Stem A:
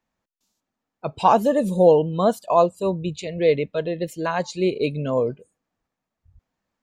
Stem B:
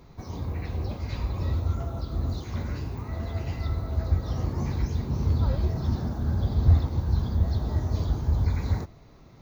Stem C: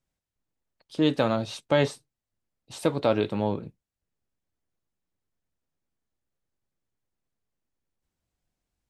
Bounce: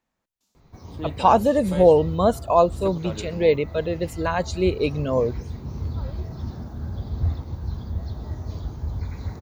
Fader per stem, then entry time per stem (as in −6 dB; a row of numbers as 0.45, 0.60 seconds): 0.0, −5.0, −11.5 decibels; 0.00, 0.55, 0.00 seconds